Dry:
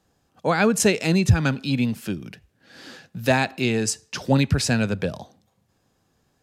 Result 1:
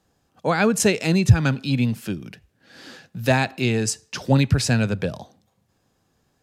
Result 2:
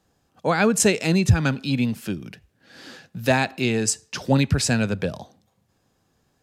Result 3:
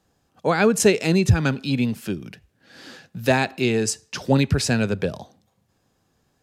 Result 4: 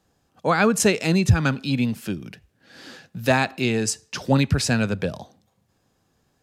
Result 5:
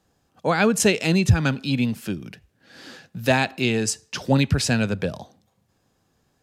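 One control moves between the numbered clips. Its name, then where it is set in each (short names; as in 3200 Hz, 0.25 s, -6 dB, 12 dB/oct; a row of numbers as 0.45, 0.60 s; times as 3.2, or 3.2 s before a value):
dynamic EQ, frequency: 120, 7800, 400, 1200, 3100 Hz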